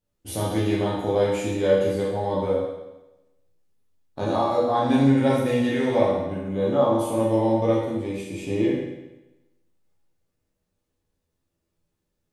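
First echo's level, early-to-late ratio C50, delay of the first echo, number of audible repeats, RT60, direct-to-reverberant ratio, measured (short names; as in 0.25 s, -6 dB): none, 0.5 dB, none, none, 1.0 s, -6.5 dB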